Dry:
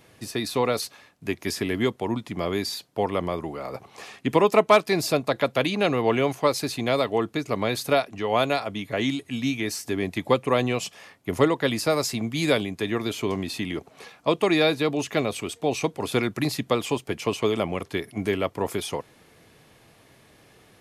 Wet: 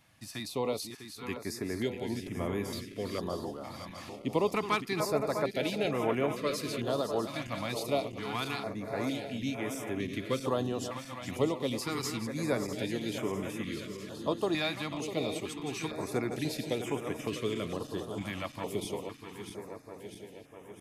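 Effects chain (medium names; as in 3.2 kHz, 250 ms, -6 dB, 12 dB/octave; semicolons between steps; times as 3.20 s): backward echo that repeats 325 ms, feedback 78%, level -8.5 dB; 2.22–2.86 s: bass shelf 83 Hz +12 dB; step-sequenced notch 2.2 Hz 420–4300 Hz; trim -8.5 dB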